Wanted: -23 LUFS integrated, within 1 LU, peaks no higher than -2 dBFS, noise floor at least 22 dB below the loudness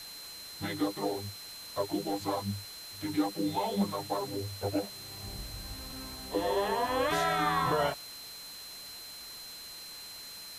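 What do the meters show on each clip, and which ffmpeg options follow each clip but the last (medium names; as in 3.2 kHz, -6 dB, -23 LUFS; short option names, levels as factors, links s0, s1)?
steady tone 4.1 kHz; tone level -45 dBFS; noise floor -46 dBFS; noise floor target -56 dBFS; loudness -34.0 LUFS; peak level -17.5 dBFS; loudness target -23.0 LUFS
-> -af "bandreject=f=4100:w=30"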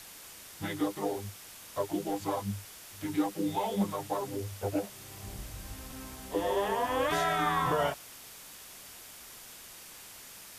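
steady tone not found; noise floor -49 dBFS; noise floor target -55 dBFS
-> -af "afftdn=nr=6:nf=-49"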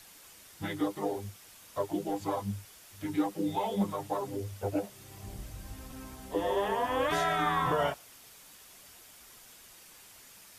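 noise floor -54 dBFS; noise floor target -55 dBFS
-> -af "afftdn=nr=6:nf=-54"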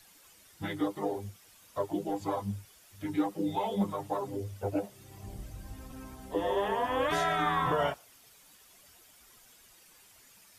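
noise floor -59 dBFS; loudness -32.5 LUFS; peak level -17.5 dBFS; loudness target -23.0 LUFS
-> -af "volume=2.99"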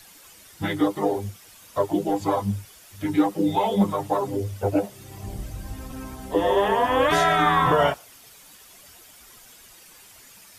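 loudness -23.0 LUFS; peak level -8.0 dBFS; noise floor -50 dBFS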